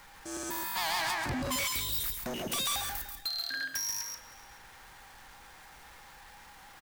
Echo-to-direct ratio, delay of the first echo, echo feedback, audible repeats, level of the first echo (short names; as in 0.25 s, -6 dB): -5.0 dB, 0.136 s, no steady repeat, 4, -5.5 dB